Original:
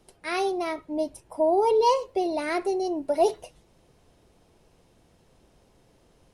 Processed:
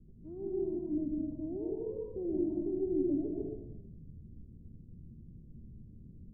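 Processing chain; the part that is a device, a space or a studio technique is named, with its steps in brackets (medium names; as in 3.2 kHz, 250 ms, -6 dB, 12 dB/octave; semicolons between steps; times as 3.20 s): club heard from the street (peak limiter -21.5 dBFS, peak gain reduction 11 dB; low-pass 230 Hz 24 dB/octave; reverberation RT60 0.90 s, pre-delay 119 ms, DRR -1.5 dB); trim +8 dB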